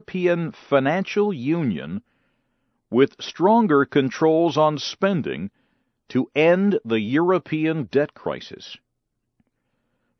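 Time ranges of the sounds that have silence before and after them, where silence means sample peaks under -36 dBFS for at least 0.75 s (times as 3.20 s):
2.92–8.75 s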